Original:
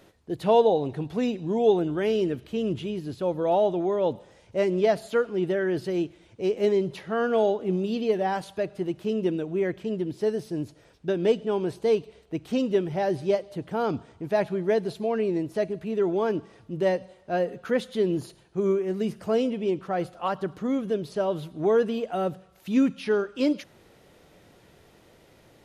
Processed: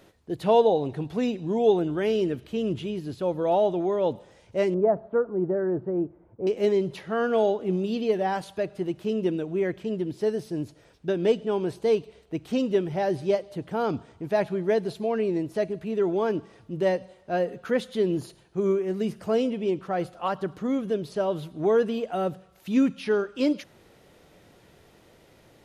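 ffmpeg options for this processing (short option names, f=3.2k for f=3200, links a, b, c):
-filter_complex "[0:a]asettb=1/sr,asplit=3[a][b][c];[a]atrim=end=4.744[d];[b]atrim=start=4.74:end=6.47,asetpts=PTS-STARTPTS,afade=t=in:d=0.004:c=qsin,afade=t=out:st=1.726:d=0.004:c=qsin,lowpass=f=1.2k:w=0.5412,lowpass=f=1.2k:w=1.3066[e];[c]atrim=start=6.466[f];[d][e]acrossfade=d=0.004:c1=hsin:c2=qsin[g];[g][f]acrossfade=d=0.004:c1=qsin:c2=hsin"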